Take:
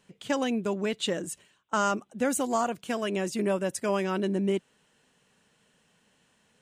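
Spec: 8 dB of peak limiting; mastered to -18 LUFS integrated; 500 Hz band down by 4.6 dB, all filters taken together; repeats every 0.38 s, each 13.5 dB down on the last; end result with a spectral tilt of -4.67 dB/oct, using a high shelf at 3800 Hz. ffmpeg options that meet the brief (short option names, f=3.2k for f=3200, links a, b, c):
-af "equalizer=f=500:t=o:g=-6,highshelf=f=3.8k:g=-4,alimiter=level_in=1.5dB:limit=-24dB:level=0:latency=1,volume=-1.5dB,aecho=1:1:380|760:0.211|0.0444,volume=17dB"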